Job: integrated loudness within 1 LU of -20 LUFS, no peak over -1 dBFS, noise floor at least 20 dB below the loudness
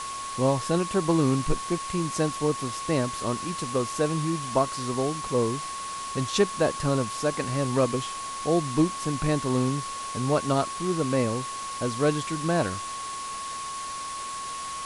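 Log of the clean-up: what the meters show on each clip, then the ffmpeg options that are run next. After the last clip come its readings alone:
steady tone 1100 Hz; tone level -33 dBFS; noise floor -35 dBFS; noise floor target -47 dBFS; loudness -27.0 LUFS; peak -9.0 dBFS; loudness target -20.0 LUFS
-> -af "bandreject=f=1.1k:w=30"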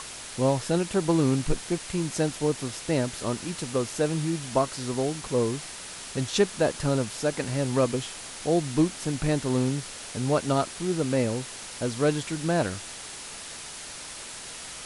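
steady tone none; noise floor -40 dBFS; noise floor target -48 dBFS
-> -af "afftdn=nr=8:nf=-40"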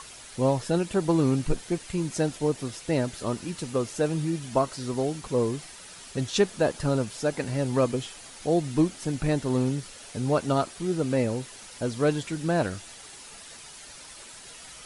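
noise floor -46 dBFS; noise floor target -48 dBFS
-> -af "afftdn=nr=6:nf=-46"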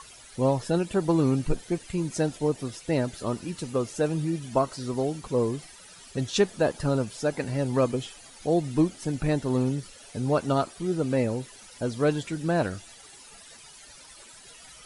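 noise floor -49 dBFS; loudness -27.5 LUFS; peak -9.5 dBFS; loudness target -20.0 LUFS
-> -af "volume=7.5dB"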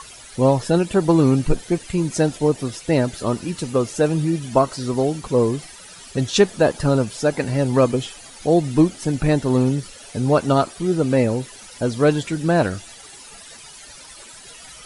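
loudness -20.0 LUFS; peak -2.0 dBFS; noise floor -42 dBFS

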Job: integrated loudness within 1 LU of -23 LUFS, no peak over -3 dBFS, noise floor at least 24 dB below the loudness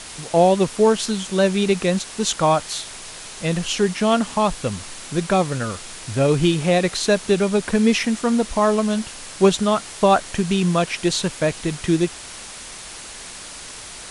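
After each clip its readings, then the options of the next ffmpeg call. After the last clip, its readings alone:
noise floor -37 dBFS; noise floor target -44 dBFS; loudness -20.0 LUFS; peak -2.5 dBFS; loudness target -23.0 LUFS
-> -af "afftdn=nr=7:nf=-37"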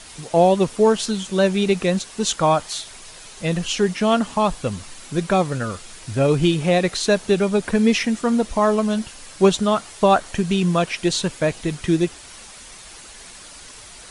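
noise floor -41 dBFS; noise floor target -44 dBFS
-> -af "afftdn=nr=6:nf=-41"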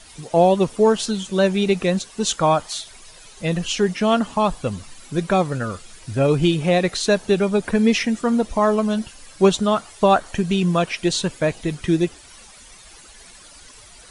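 noise floor -45 dBFS; loudness -20.0 LUFS; peak -3.0 dBFS; loudness target -23.0 LUFS
-> -af "volume=-3dB"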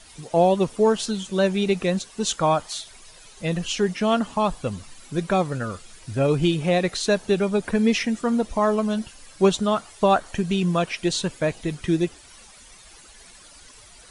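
loudness -23.0 LUFS; peak -6.0 dBFS; noise floor -48 dBFS

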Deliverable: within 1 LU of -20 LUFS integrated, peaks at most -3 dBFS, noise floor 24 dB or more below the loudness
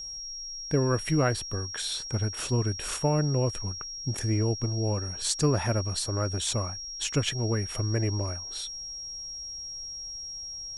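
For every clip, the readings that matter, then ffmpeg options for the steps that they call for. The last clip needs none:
steady tone 5600 Hz; tone level -36 dBFS; loudness -29.5 LUFS; peak -9.5 dBFS; loudness target -20.0 LUFS
-> -af "bandreject=f=5.6k:w=30"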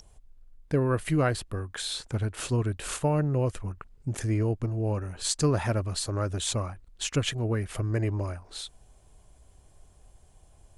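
steady tone none; loudness -29.5 LUFS; peak -10.0 dBFS; loudness target -20.0 LUFS
-> -af "volume=9.5dB,alimiter=limit=-3dB:level=0:latency=1"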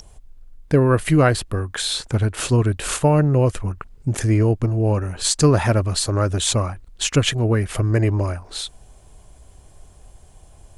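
loudness -20.0 LUFS; peak -3.0 dBFS; noise floor -48 dBFS

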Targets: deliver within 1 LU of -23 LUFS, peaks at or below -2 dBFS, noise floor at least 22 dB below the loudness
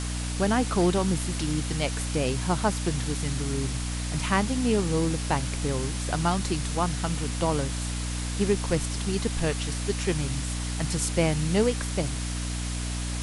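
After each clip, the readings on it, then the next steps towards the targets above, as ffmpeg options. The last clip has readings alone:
hum 60 Hz; harmonics up to 300 Hz; hum level -29 dBFS; noise floor -31 dBFS; noise floor target -50 dBFS; loudness -27.5 LUFS; peak -10.0 dBFS; loudness target -23.0 LUFS
-> -af "bandreject=f=60:t=h:w=4,bandreject=f=120:t=h:w=4,bandreject=f=180:t=h:w=4,bandreject=f=240:t=h:w=4,bandreject=f=300:t=h:w=4"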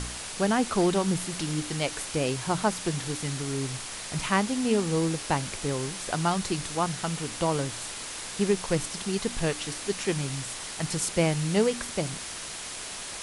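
hum none; noise floor -38 dBFS; noise floor target -51 dBFS
-> -af "afftdn=nr=13:nf=-38"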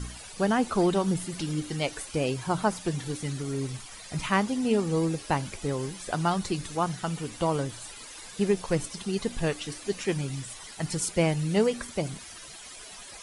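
noise floor -45 dBFS; noise floor target -51 dBFS
-> -af "afftdn=nr=6:nf=-45"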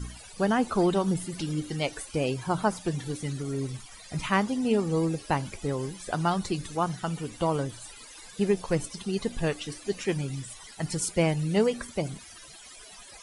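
noise floor -48 dBFS; noise floor target -51 dBFS
-> -af "afftdn=nr=6:nf=-48"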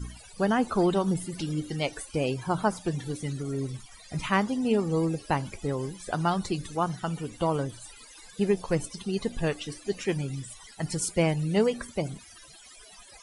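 noise floor -51 dBFS; loudness -29.0 LUFS; peak -11.5 dBFS; loudness target -23.0 LUFS
-> -af "volume=6dB"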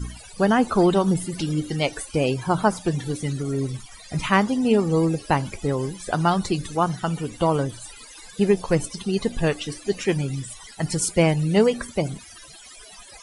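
loudness -23.0 LUFS; peak -5.5 dBFS; noise floor -45 dBFS

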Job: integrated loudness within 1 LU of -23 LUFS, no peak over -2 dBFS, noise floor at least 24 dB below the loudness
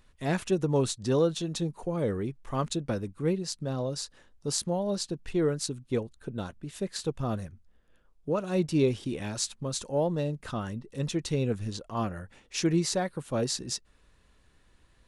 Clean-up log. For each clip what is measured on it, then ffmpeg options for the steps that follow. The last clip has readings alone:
loudness -31.0 LUFS; peak -11.0 dBFS; loudness target -23.0 LUFS
-> -af "volume=8dB"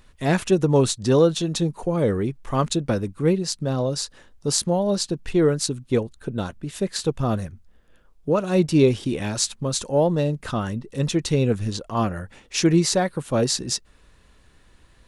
loudness -23.0 LUFS; peak -3.0 dBFS; noise floor -55 dBFS

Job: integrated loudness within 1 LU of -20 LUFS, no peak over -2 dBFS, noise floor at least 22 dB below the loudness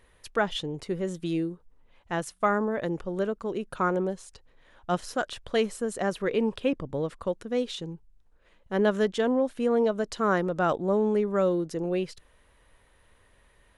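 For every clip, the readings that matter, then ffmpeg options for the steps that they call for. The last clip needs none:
loudness -28.5 LUFS; peak -11.5 dBFS; loudness target -20.0 LUFS
-> -af "volume=8.5dB"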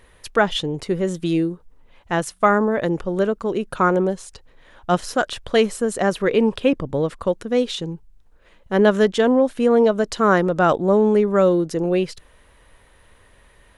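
loudness -20.0 LUFS; peak -3.0 dBFS; noise floor -54 dBFS

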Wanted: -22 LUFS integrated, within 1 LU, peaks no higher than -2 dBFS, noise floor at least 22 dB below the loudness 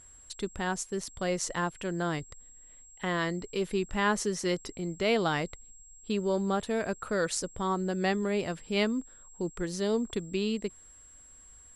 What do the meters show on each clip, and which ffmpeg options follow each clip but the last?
steady tone 7600 Hz; tone level -52 dBFS; loudness -31.5 LUFS; peak -14.0 dBFS; loudness target -22.0 LUFS
-> -af "bandreject=f=7.6k:w=30"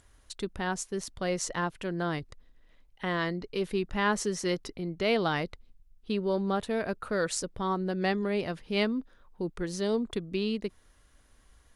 steady tone none; loudness -31.5 LUFS; peak -14.0 dBFS; loudness target -22.0 LUFS
-> -af "volume=9.5dB"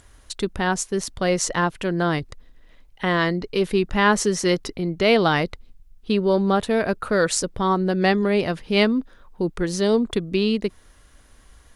loudness -22.0 LUFS; peak -4.5 dBFS; noise floor -52 dBFS

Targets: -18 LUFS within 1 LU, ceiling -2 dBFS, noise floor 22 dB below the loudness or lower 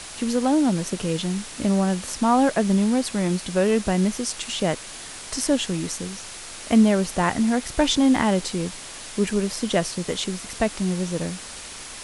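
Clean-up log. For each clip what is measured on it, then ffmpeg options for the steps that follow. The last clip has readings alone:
noise floor -38 dBFS; noise floor target -45 dBFS; loudness -23.0 LUFS; peak -6.0 dBFS; loudness target -18.0 LUFS
-> -af "afftdn=nr=7:nf=-38"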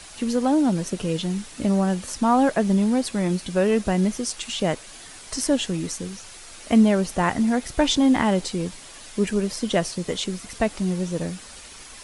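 noise floor -43 dBFS; noise floor target -45 dBFS
-> -af "afftdn=nr=6:nf=-43"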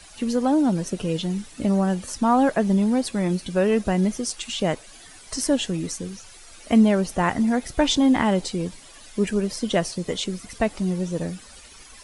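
noise floor -46 dBFS; loudness -23.0 LUFS; peak -6.0 dBFS; loudness target -18.0 LUFS
-> -af "volume=5dB,alimiter=limit=-2dB:level=0:latency=1"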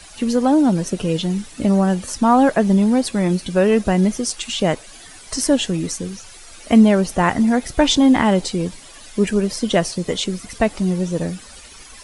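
loudness -18.0 LUFS; peak -2.0 dBFS; noise floor -41 dBFS

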